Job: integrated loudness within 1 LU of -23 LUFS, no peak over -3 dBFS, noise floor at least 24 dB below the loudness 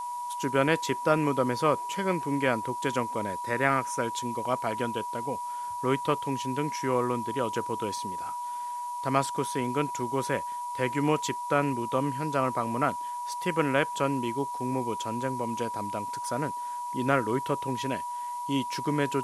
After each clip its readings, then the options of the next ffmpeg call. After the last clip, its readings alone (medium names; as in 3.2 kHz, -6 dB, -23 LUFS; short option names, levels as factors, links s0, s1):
steady tone 970 Hz; tone level -32 dBFS; noise floor -35 dBFS; noise floor target -54 dBFS; loudness -29.5 LUFS; peak level -8.0 dBFS; loudness target -23.0 LUFS
-> -af "bandreject=f=970:w=30"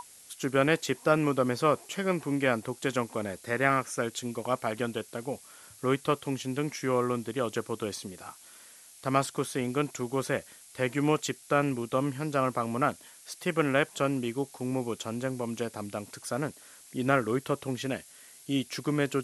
steady tone not found; noise floor -53 dBFS; noise floor target -54 dBFS
-> -af "afftdn=nr=6:nf=-53"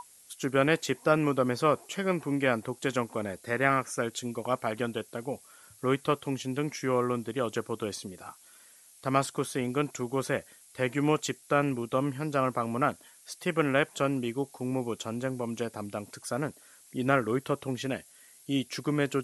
noise floor -57 dBFS; loudness -30.5 LUFS; peak level -8.5 dBFS; loudness target -23.0 LUFS
-> -af "volume=2.37,alimiter=limit=0.708:level=0:latency=1"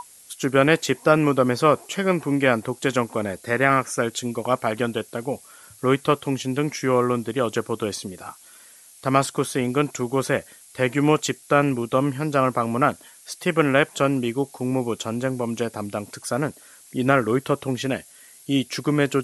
loudness -23.0 LUFS; peak level -3.0 dBFS; noise floor -49 dBFS